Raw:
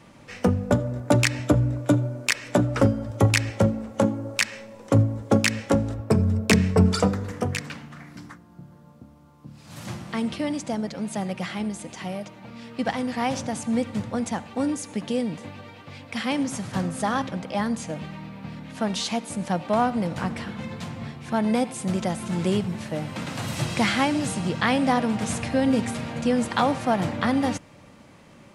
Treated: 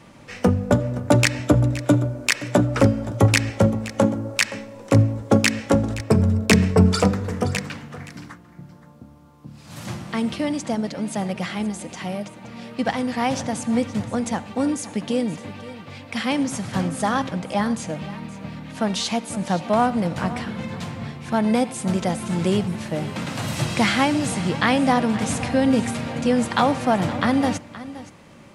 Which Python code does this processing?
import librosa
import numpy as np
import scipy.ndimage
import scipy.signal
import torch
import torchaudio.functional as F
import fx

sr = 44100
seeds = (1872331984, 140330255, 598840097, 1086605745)

y = x + 10.0 ** (-16.0 / 20.0) * np.pad(x, (int(521 * sr / 1000.0), 0))[:len(x)]
y = y * 10.0 ** (3.0 / 20.0)